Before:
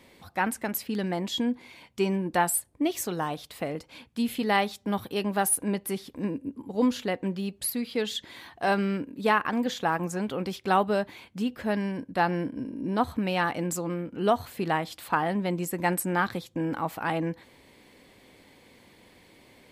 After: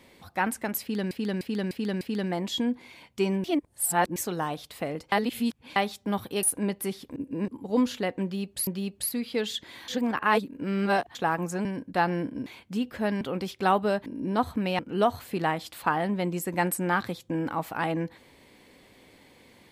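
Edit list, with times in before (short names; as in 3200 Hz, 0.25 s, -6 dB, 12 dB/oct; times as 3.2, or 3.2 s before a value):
0.81–1.11 loop, 5 plays
2.24–2.96 reverse
3.92–4.56 reverse
5.23–5.48 cut
6.21–6.53 reverse
7.28–7.72 loop, 2 plays
8.49–9.76 reverse
10.26–11.11 swap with 11.86–12.67
13.4–14.05 cut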